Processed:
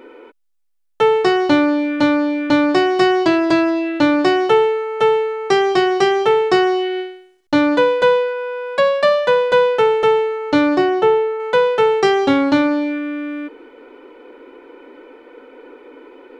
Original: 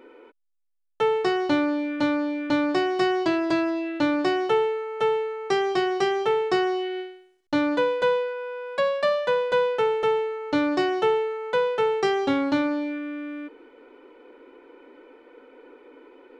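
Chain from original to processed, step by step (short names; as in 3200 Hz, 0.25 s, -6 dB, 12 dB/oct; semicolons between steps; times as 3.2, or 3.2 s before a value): 10.77–11.4 high shelf 2300 Hz -9.5 dB; gain +8.5 dB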